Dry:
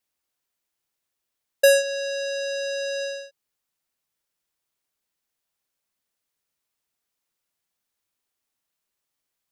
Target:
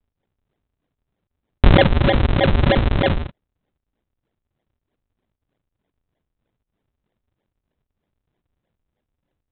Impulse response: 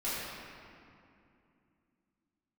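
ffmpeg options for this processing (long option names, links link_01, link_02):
-af "highpass=350,aresample=8000,acrusher=samples=28:mix=1:aa=0.000001:lfo=1:lforange=44.8:lforate=3.2,aresample=44100,alimiter=level_in=14.5dB:limit=-1dB:release=50:level=0:latency=1,volume=-1dB"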